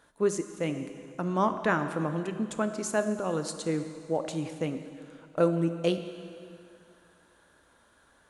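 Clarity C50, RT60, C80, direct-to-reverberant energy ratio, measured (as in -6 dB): 9.0 dB, 2.4 s, 10.0 dB, 8.0 dB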